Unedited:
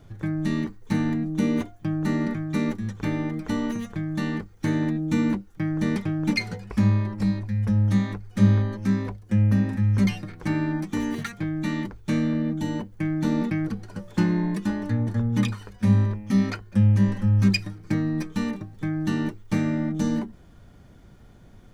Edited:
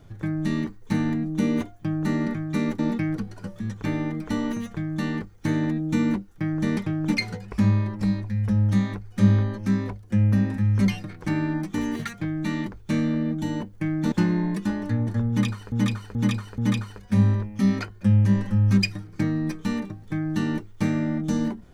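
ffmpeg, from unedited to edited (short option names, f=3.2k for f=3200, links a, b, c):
-filter_complex "[0:a]asplit=7[a][b][c][d][e][f][g];[a]atrim=end=2.792[h];[b]atrim=start=13.308:end=14.122[i];[c]atrim=start=2.788:end=13.312[j];[d]atrim=start=14.118:end=15.722[k];[e]atrim=start=15.288:end=15.722[l];[f]atrim=start=15.288:end=15.722[m];[g]atrim=start=15.288[n];[h][i]acrossfade=d=0.004:c1=hsin:c2=hsin[o];[o][j]acrossfade=d=0.004:c1=hsin:c2=hsin[p];[p][k]acrossfade=d=0.004:c1=hsin:c2=hsin[q];[q][l]acrossfade=d=0.004:c1=hsin:c2=hsin[r];[r][m]acrossfade=d=0.004:c1=hsin:c2=hsin[s];[s][n]acrossfade=d=0.004:c1=hsin:c2=hsin"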